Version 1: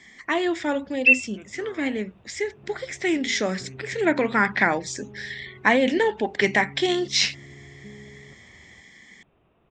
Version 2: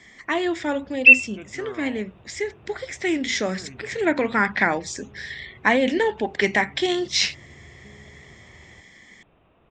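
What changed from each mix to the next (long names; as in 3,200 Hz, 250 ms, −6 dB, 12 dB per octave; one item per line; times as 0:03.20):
first sound +5.5 dB
second sound −6.5 dB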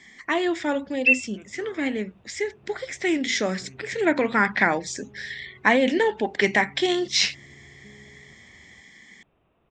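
first sound −8.0 dB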